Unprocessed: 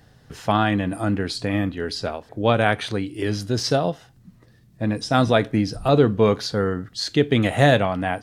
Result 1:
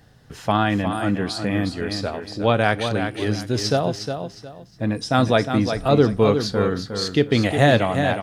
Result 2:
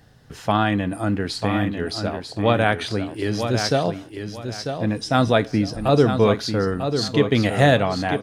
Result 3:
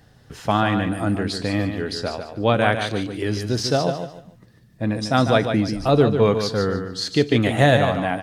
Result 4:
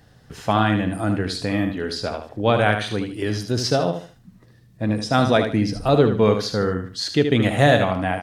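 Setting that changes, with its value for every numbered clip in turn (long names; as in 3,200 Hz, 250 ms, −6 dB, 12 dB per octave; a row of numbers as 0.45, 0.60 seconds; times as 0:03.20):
repeating echo, delay time: 360, 945, 147, 75 milliseconds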